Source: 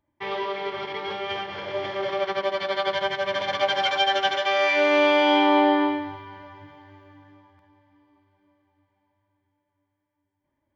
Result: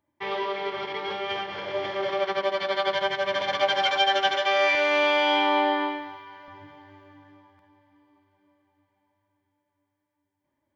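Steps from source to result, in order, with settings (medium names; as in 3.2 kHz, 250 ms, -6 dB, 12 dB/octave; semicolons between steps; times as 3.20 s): high-pass 130 Hz 6 dB/octave, from 4.75 s 750 Hz, from 6.48 s 120 Hz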